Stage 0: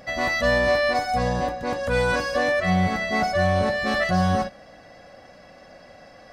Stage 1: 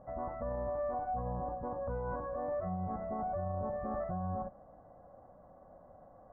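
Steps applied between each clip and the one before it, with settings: steep low-pass 1.1 kHz 36 dB/octave; peaking EQ 330 Hz -7 dB 2.6 oct; peak limiter -25.5 dBFS, peak gain reduction 10.5 dB; trim -4 dB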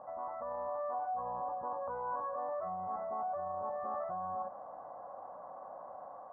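level rider gain up to 6 dB; band-pass filter 1 kHz, Q 2.5; level flattener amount 50%; trim -2 dB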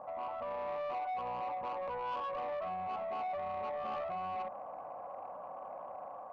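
saturation -36.5 dBFS, distortion -14 dB; trim +3 dB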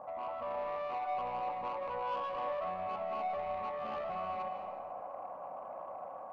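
reverberation RT60 1.5 s, pre-delay 115 ms, DRR 5.5 dB

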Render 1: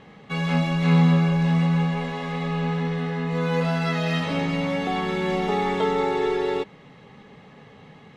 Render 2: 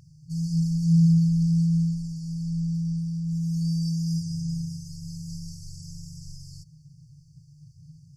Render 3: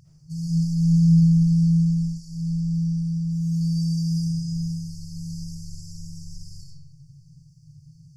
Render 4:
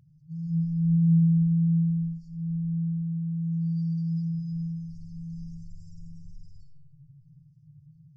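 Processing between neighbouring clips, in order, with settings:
FFT band-reject 170–4500 Hz; trim +4 dB
reverberation RT60 1.1 s, pre-delay 35 ms, DRR -2 dB; trim -1.5 dB
spectral contrast enhancement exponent 1.8; trim -4.5 dB

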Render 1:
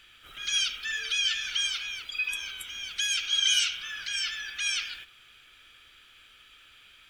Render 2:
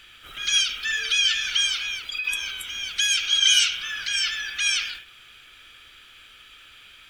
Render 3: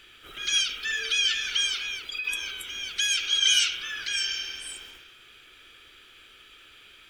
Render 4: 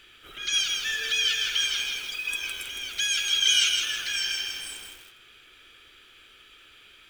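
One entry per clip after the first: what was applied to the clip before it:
endings held to a fixed fall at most 110 dB/s; trim +6.5 dB
spectral replace 4.25–5.16 s, 1.1–6.8 kHz both; peaking EQ 380 Hz +9.5 dB 0.87 oct; trim -3.5 dB
bit-crushed delay 161 ms, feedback 55%, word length 7-bit, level -4 dB; trim -1 dB

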